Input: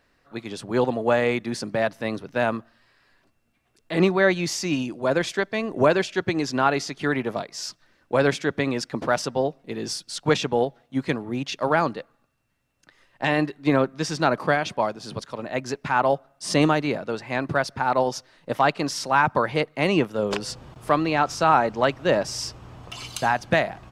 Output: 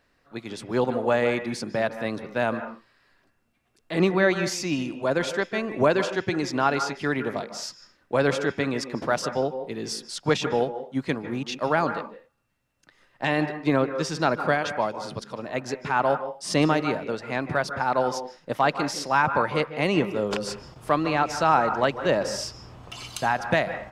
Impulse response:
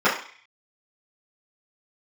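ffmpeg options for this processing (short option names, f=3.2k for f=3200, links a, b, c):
-filter_complex "[0:a]asplit=2[a][b];[1:a]atrim=start_sample=2205,atrim=end_sample=6174,adelay=140[c];[b][c]afir=irnorm=-1:irlink=0,volume=-29.5dB[d];[a][d]amix=inputs=2:normalize=0,volume=-2dB"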